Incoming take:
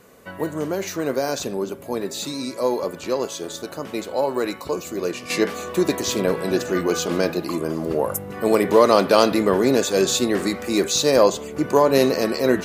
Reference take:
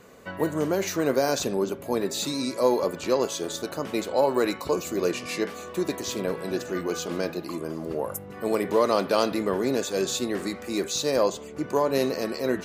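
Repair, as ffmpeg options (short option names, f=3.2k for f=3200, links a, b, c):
-af "agate=range=-21dB:threshold=-27dB,asetnsamples=n=441:p=0,asendcmd='5.3 volume volume -7.5dB',volume=0dB"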